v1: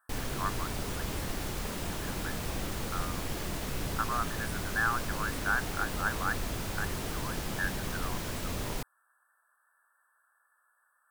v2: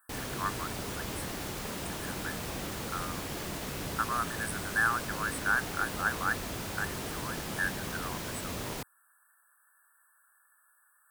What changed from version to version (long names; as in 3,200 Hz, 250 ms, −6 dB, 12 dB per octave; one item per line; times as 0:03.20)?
speech: add spectral tilt +3.5 dB per octave
master: add high-pass filter 110 Hz 6 dB per octave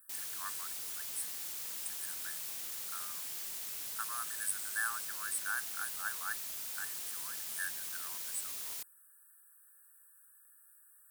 speech +4.0 dB
master: add first-order pre-emphasis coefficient 0.97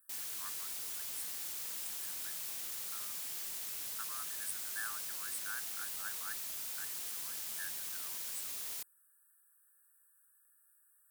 speech −7.0 dB